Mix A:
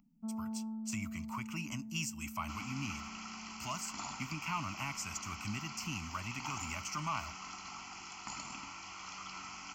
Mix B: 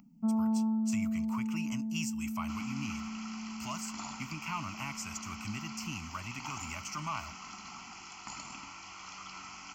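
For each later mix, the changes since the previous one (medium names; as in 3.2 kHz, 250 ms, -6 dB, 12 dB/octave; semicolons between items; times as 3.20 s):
first sound +11.0 dB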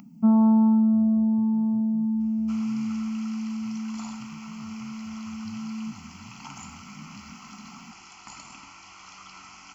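speech: add four-pole ladder low-pass 280 Hz, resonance 20%; first sound +11.5 dB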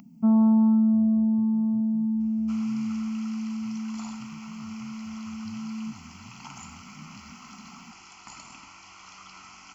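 reverb: off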